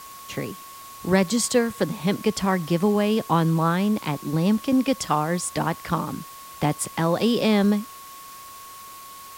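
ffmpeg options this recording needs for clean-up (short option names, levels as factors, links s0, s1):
-af "adeclick=t=4,bandreject=f=1100:w=30,afwtdn=0.0063"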